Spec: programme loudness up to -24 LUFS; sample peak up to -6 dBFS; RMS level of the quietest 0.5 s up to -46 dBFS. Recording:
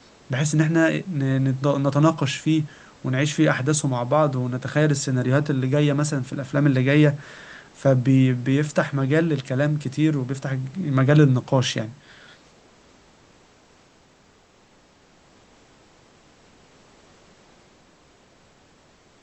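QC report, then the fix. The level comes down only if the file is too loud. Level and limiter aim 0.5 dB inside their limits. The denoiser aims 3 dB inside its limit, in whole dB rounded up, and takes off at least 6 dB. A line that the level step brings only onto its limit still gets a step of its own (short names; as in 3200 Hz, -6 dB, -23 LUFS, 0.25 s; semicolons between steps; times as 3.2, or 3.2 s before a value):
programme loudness -21.5 LUFS: fail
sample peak -3.5 dBFS: fail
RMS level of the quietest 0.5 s -56 dBFS: OK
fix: gain -3 dB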